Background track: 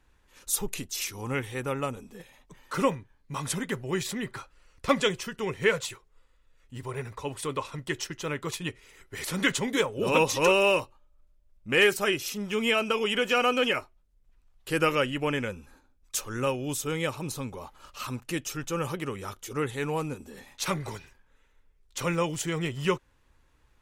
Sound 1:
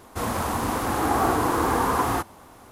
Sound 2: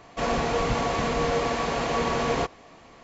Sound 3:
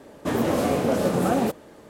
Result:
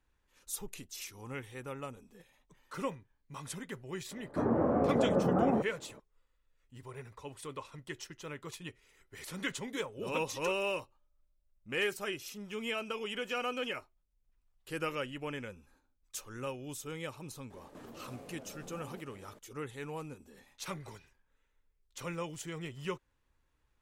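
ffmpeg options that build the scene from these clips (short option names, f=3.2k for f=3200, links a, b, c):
-filter_complex "[3:a]asplit=2[a][b];[0:a]volume=-11.5dB[c];[a]lowpass=f=1.4k:w=0.5412,lowpass=f=1.4k:w=1.3066[d];[b]acompressor=threshold=-38dB:ratio=6:attack=3.2:release=140:knee=1:detection=peak[e];[d]atrim=end=1.89,asetpts=PTS-STARTPTS,volume=-6dB,afade=t=in:d=0.004:c=hsin,afade=t=out:st=1.886:d=0.004:c=hsin,adelay=4110[f];[e]atrim=end=1.89,asetpts=PTS-STARTPTS,volume=-10.5dB,afade=t=in:d=0.004:c=hsin,afade=t=out:st=1.886:d=0.004:c=hsin,adelay=17500[g];[c][f][g]amix=inputs=3:normalize=0"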